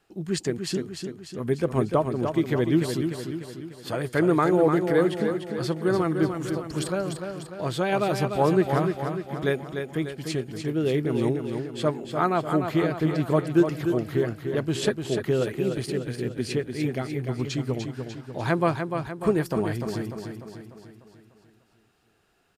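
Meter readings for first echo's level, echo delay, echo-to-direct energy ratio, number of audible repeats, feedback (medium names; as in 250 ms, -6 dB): -6.5 dB, 297 ms, -5.0 dB, 6, 53%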